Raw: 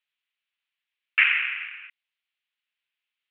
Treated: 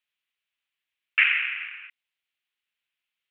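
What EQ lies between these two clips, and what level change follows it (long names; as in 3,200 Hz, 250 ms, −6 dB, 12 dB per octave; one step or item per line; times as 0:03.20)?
dynamic equaliser 880 Hz, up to −5 dB, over −39 dBFS, Q 1.3
0.0 dB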